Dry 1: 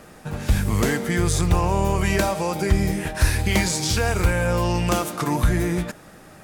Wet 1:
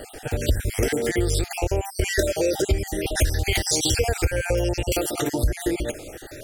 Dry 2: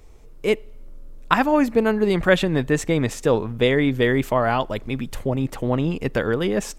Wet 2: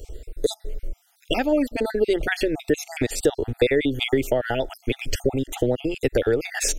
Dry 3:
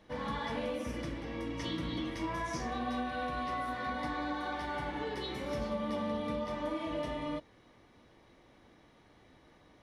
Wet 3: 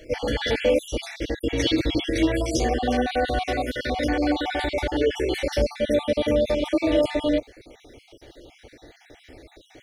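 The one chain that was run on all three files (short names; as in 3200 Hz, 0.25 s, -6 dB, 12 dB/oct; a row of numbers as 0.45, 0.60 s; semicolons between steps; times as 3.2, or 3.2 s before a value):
random spectral dropouts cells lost 47%; compressor 6:1, threshold -28 dBFS; fixed phaser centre 440 Hz, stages 4; match loudness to -24 LUFS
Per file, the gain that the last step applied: +12.0, +13.0, +19.0 dB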